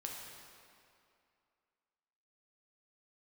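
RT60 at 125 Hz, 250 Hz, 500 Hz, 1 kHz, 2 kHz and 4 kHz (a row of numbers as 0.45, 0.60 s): 2.1, 2.4, 2.4, 2.5, 2.2, 1.9 s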